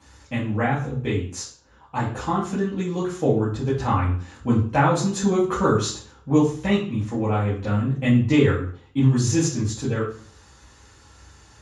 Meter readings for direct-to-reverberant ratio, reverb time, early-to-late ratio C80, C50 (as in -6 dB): -8.0 dB, 0.50 s, 10.5 dB, 6.0 dB